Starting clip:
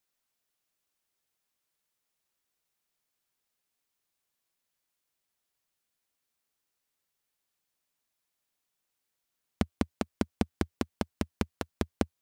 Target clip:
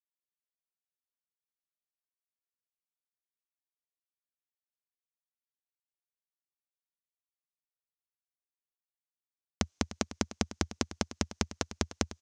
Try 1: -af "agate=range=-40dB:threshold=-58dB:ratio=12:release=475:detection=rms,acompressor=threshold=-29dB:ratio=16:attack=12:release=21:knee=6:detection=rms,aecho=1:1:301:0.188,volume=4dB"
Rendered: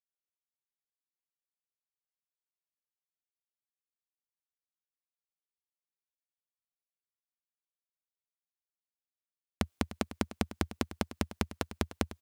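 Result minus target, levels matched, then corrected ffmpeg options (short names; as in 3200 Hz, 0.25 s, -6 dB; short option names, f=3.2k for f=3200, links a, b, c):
8000 Hz band -6.5 dB
-af "agate=range=-40dB:threshold=-58dB:ratio=12:release=475:detection=rms,acompressor=threshold=-29dB:ratio=16:attack=12:release=21:knee=6:detection=rms,lowpass=f=6.2k:t=q:w=3.8,aecho=1:1:301:0.188,volume=4dB"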